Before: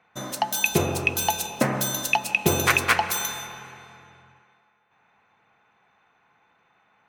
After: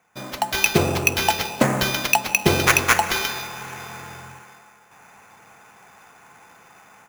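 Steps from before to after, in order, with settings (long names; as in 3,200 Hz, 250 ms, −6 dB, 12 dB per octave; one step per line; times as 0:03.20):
automatic gain control gain up to 15.5 dB
sample-rate reduction 8,500 Hz, jitter 0%
level −1 dB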